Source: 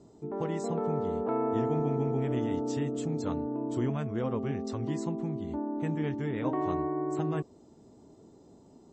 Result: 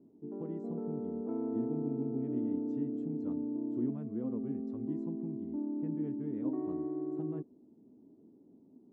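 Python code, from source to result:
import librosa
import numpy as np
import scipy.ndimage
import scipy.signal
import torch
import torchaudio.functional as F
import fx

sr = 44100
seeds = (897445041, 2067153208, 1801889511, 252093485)

y = fx.bandpass_q(x, sr, hz=260.0, q=2.6)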